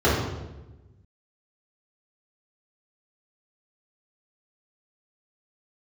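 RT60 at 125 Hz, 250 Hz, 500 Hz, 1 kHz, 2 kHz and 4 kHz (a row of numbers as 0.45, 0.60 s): 1.8, 1.4, 1.2, 0.95, 0.85, 0.80 s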